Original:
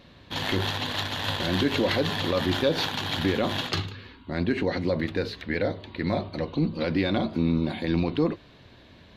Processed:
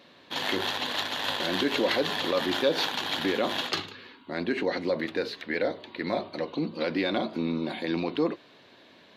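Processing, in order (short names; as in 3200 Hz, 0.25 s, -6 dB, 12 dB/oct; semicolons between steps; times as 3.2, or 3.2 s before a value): HPF 290 Hz 12 dB/oct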